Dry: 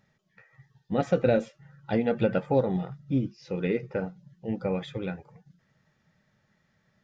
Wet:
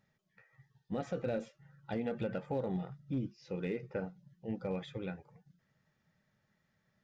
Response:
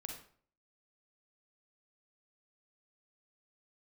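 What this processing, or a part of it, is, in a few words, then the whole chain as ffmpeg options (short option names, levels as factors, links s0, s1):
limiter into clipper: -af "alimiter=limit=0.106:level=0:latency=1:release=49,asoftclip=type=hard:threshold=0.0944,volume=0.422"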